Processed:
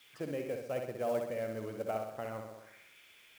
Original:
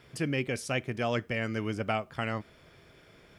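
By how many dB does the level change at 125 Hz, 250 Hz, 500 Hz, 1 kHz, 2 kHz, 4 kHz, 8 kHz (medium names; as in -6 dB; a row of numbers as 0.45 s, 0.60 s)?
-12.5 dB, -9.5 dB, -1.0 dB, -6.5 dB, -14.5 dB, -15.0 dB, -11.0 dB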